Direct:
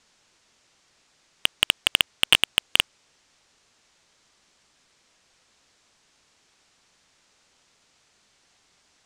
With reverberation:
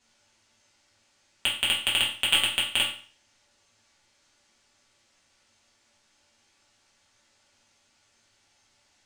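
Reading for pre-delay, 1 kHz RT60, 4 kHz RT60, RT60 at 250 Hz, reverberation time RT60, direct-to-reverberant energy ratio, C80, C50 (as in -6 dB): 3 ms, 0.45 s, 0.40 s, 0.45 s, 0.45 s, -6.5 dB, 10.5 dB, 6.0 dB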